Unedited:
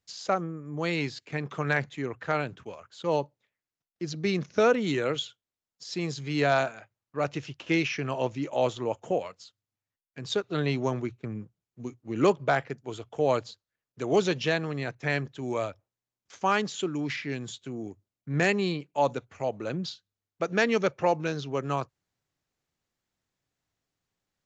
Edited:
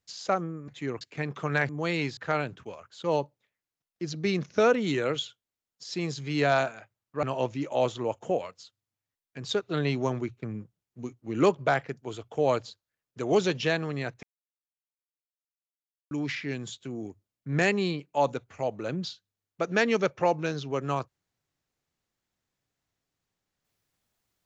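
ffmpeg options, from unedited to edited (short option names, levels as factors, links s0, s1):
-filter_complex "[0:a]asplit=8[s0][s1][s2][s3][s4][s5][s6][s7];[s0]atrim=end=0.682[s8];[s1]atrim=start=1.838:end=2.172[s9];[s2]atrim=start=1.158:end=1.842[s10];[s3]atrim=start=0.678:end=1.162[s11];[s4]atrim=start=2.168:end=7.232[s12];[s5]atrim=start=8.038:end=15.04,asetpts=PTS-STARTPTS,afade=t=out:st=6.998:d=0.004:c=hsin[s13];[s6]atrim=start=15.04:end=16.92,asetpts=PTS-STARTPTS,volume=0[s14];[s7]atrim=start=16.92,asetpts=PTS-STARTPTS,afade=t=in:d=0.004:c=hsin[s15];[s8][s9]acrossfade=d=0.004:c1=hsin:c2=hsin[s16];[s16][s10]acrossfade=d=0.004:c1=hsin:c2=hsin[s17];[s17][s11]acrossfade=d=0.004:c1=hsin:c2=hsin[s18];[s18][s12]acrossfade=d=0.004:c1=hsin:c2=hsin[s19];[s13][s14][s15]concat=n=3:v=0:a=1[s20];[s19][s20]acrossfade=d=0.004:c1=hsin:c2=hsin"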